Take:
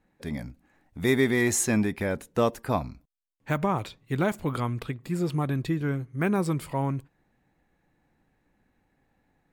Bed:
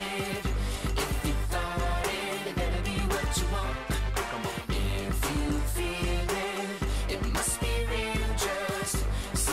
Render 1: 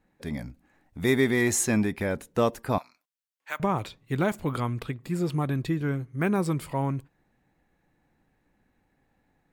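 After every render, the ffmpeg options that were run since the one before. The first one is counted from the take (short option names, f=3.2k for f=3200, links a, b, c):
-filter_complex "[0:a]asettb=1/sr,asplit=3[a][b][c];[a]atrim=end=2.784[d];[b]atrim=start=2.78:end=3.6,asetpts=PTS-STARTPTS,afade=t=in:d=0.004:c=qsin,afade=t=out:st=0.816:d=0.004:c=qsin,highpass=1.1k[e];[c]atrim=start=3.596[f];[d][e]acrossfade=d=0.004:c1=hsin:c2=qsin[g];[g][f]acrossfade=d=0.004:c1=qsin:c2=hsin"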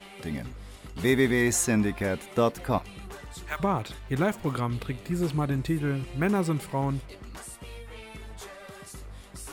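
-filter_complex "[1:a]volume=-13.5dB[a];[0:a][a]amix=inputs=2:normalize=0"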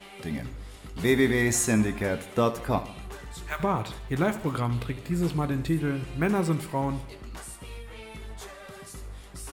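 -filter_complex "[0:a]asplit=2[a][b];[b]adelay=18,volume=-11.5dB[c];[a][c]amix=inputs=2:normalize=0,aecho=1:1:75|150|225|300|375:0.188|0.0942|0.0471|0.0235|0.0118"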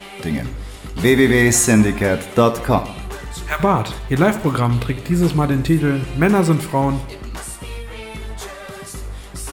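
-af "volume=10.5dB,alimiter=limit=-3dB:level=0:latency=1"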